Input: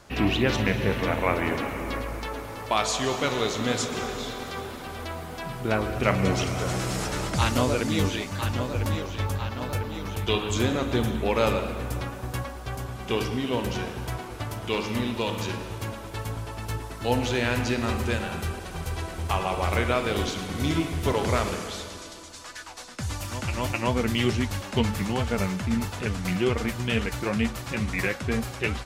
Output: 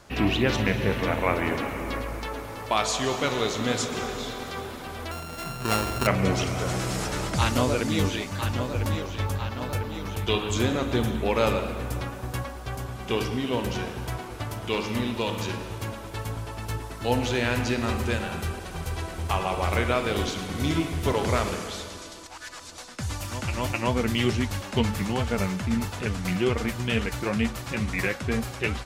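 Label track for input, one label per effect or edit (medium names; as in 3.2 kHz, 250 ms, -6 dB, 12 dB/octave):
5.110000	6.070000	sorted samples in blocks of 32 samples
22.260000	22.780000	reverse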